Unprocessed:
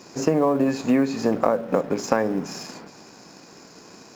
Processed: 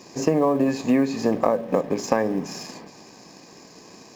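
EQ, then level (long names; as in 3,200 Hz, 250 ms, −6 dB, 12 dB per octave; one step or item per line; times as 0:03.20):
Butterworth band-reject 1,400 Hz, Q 5.5
0.0 dB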